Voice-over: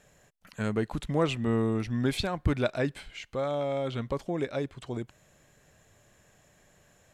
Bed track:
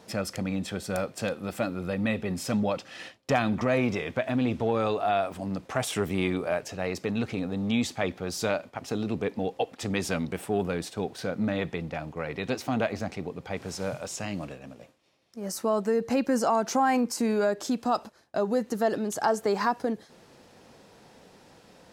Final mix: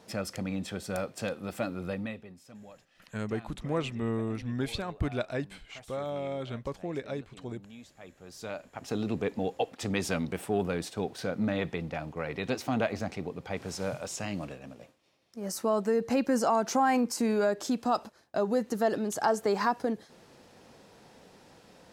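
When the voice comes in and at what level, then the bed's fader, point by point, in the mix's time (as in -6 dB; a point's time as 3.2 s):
2.55 s, -4.5 dB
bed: 1.92 s -3.5 dB
2.41 s -23 dB
7.94 s -23 dB
8.95 s -1.5 dB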